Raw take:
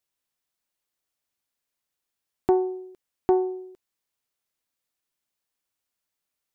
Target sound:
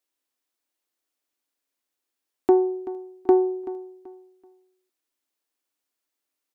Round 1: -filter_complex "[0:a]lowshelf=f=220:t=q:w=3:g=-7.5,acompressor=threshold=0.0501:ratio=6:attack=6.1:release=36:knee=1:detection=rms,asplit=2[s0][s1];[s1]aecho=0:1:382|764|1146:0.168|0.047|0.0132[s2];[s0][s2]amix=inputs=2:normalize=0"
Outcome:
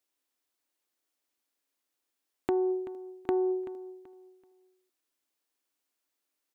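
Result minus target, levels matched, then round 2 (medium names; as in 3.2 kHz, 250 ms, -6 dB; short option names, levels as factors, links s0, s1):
compression: peak gain reduction +13 dB
-filter_complex "[0:a]lowshelf=f=220:t=q:w=3:g=-7.5,asplit=2[s0][s1];[s1]aecho=0:1:382|764|1146:0.168|0.047|0.0132[s2];[s0][s2]amix=inputs=2:normalize=0"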